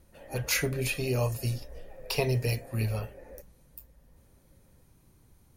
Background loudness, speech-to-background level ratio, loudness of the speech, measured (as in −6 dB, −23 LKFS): −49.5 LKFS, 19.0 dB, −30.5 LKFS